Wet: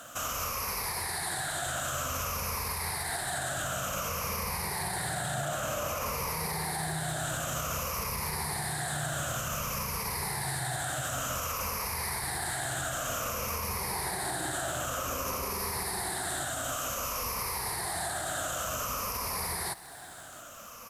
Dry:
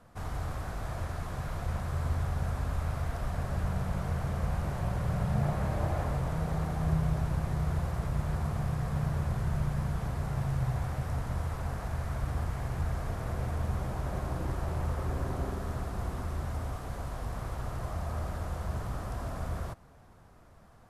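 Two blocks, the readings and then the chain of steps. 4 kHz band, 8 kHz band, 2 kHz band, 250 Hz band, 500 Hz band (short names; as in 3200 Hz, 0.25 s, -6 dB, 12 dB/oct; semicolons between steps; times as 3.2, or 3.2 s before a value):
+15.0 dB, +20.0 dB, +10.0 dB, -5.0 dB, +2.5 dB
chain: moving spectral ripple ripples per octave 0.85, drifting -0.54 Hz, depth 13 dB; tilt +4.5 dB/oct; notch 3400 Hz, Q 28; in parallel at -2.5 dB: compressor, threshold -48 dBFS, peak gain reduction 17 dB; on the sum: limiter -30 dBFS, peak gain reduction 9 dB; on a send: echo 0.679 s -22.5 dB; on the sum: crackle 19/s -43 dBFS; gain +6 dB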